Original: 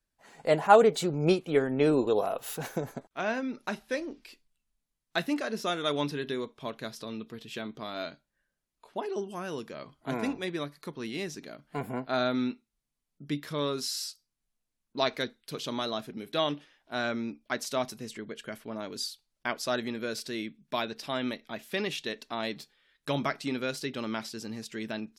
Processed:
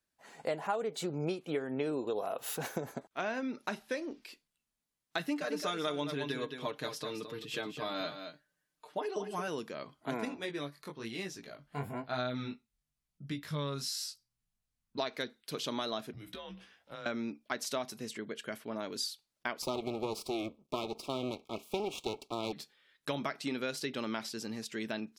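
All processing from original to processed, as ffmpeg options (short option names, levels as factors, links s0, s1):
-filter_complex "[0:a]asettb=1/sr,asplit=3[s0][s1][s2];[s0]atrim=end=5.194[s3];[s1]atrim=start=5.19:end=9.48,asetpts=PTS-STARTPTS,afade=t=in:d=0.004:c=qsin,afade=t=out:st=4.286:d=0.004:c=qsin,aecho=1:1:6.6:0.72,atrim=end_sample=189189,aecho=1:1:217:0.335,atrim=end_sample=189189[s4];[s2]atrim=start=9.476[s5];[s3][s4]acrossfade=d=0.004:c1=hsin:c2=qsin[s6];[s6][s5]acrossfade=d=0.004:c1=qsin:c2=hsin,asettb=1/sr,asplit=3[s7][s8][s9];[s7]atrim=end=10.254[s10];[s8]atrim=start=10.25:end=14.98,asetpts=PTS-STARTPTS,afade=t=in:d=0.004:c=qsin,afade=t=out:st=4.726:d=0.004:c=qsin,asubboost=boost=11.5:cutoff=110,flanger=delay=16:depth=5.7:speed=1[s11];[s9]atrim=start=14.976[s12];[s10][s11]acrossfade=d=0.004:c1=hsin:c2=qsin[s13];[s13][s12]acrossfade=d=0.004:c1=qsin:c2=hsin,asettb=1/sr,asplit=3[s14][s15][s16];[s14]atrim=end=16.134[s17];[s15]atrim=start=16.13:end=17.06,asetpts=PTS-STARTPTS,afade=t=in:d=0.004:c=qsin,afade=t=out:st=0.926:d=0.004:c=qsin,acompressor=threshold=0.00891:ratio=16:attack=3.2:release=140:knee=1:detection=peak,afreqshift=-100,asplit=2[s18][s19];[s19]adelay=16,volume=0.447[s20];[s18][s20]amix=inputs=2:normalize=0,atrim=end_sample=41013[s21];[s16]atrim=start=17.056[s22];[s17][s21]acrossfade=d=0.004:c1=hsin:c2=qsin[s23];[s23][s22]acrossfade=d=0.004:c1=qsin:c2=hsin,asettb=1/sr,asplit=3[s24][s25][s26];[s24]atrim=end=19.624[s27];[s25]atrim=start=19.62:end=22.53,asetpts=PTS-STARTPTS,afade=t=in:d=0.004:c=qsin,afade=t=out:st=2.906:d=0.004:c=qsin,equalizer=f=380:w=1.7:g=12,aeval=exprs='max(val(0),0)':c=same,asuperstop=centerf=1700:order=20:qfactor=2[s28];[s26]atrim=start=22.526[s29];[s27][s28]acrossfade=d=0.004:c1=hsin:c2=qsin[s30];[s30][s29]acrossfade=d=0.004:c1=qsin:c2=hsin,highpass=f=160:p=1,acompressor=threshold=0.0282:ratio=8"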